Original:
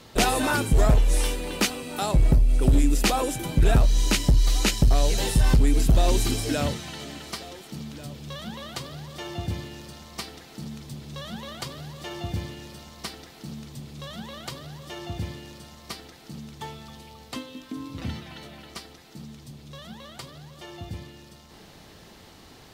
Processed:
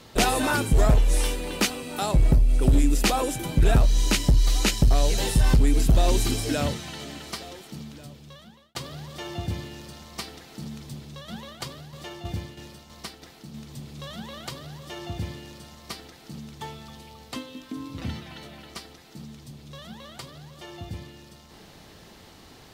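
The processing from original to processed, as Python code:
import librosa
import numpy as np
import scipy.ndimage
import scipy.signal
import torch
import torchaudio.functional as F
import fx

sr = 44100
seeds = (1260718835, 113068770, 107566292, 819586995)

y = fx.tremolo_shape(x, sr, shape='saw_down', hz=3.1, depth_pct=55, at=(10.96, 13.69))
y = fx.edit(y, sr, fx.fade_out_span(start_s=7.54, length_s=1.21), tone=tone)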